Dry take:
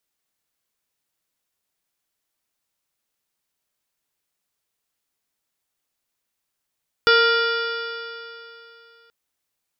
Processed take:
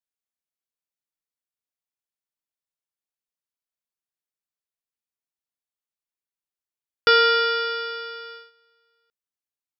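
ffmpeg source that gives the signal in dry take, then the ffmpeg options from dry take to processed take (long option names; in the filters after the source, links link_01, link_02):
-f lavfi -i "aevalsrc='0.15*pow(10,-3*t/2.9)*sin(2*PI*460.74*t)+0.0266*pow(10,-3*t/2.9)*sin(2*PI*925.87*t)+0.211*pow(10,-3*t/2.9)*sin(2*PI*1399.73*t)+0.0422*pow(10,-3*t/2.9)*sin(2*PI*1886.52*t)+0.0398*pow(10,-3*t/2.9)*sin(2*PI*2390.23*t)+0.0562*pow(10,-3*t/2.9)*sin(2*PI*2914.64*t)+0.075*pow(10,-3*t/2.9)*sin(2*PI*3463.26*t)+0.0211*pow(10,-3*t/2.9)*sin(2*PI*4039.29*t)+0.0668*pow(10,-3*t/2.9)*sin(2*PI*4645.66*t)+0.0376*pow(10,-3*t/2.9)*sin(2*PI*5285*t)':duration=2.03:sample_rate=44100"
-af "agate=range=-17dB:threshold=-40dB:ratio=16:detection=peak"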